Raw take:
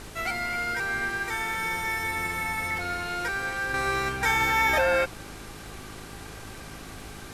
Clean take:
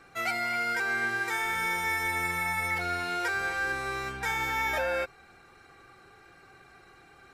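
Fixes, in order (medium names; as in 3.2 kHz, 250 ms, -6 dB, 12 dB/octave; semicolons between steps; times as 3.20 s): de-click; de-hum 53 Hz, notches 8; noise print and reduce 14 dB; trim 0 dB, from 3.74 s -6.5 dB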